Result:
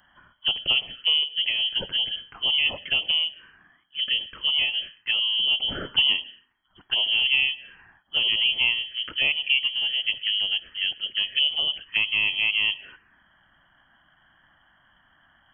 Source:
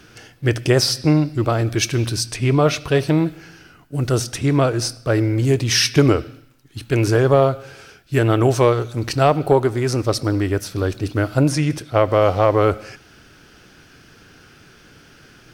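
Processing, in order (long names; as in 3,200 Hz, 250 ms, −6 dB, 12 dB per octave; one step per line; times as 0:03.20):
voice inversion scrambler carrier 3,200 Hz
phaser swept by the level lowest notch 440 Hz, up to 1,600 Hz, full sweep at −13.5 dBFS
level −6 dB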